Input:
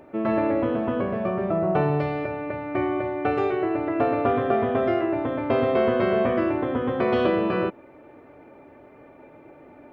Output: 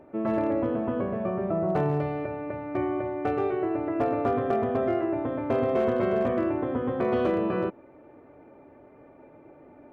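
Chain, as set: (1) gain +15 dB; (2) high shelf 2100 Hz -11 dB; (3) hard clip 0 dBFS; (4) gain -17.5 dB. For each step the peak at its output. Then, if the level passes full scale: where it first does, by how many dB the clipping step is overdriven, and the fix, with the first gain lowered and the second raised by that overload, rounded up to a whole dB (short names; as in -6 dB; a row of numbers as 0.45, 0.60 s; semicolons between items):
+6.5, +5.5, 0.0, -17.5 dBFS; step 1, 5.5 dB; step 1 +9 dB, step 4 -11.5 dB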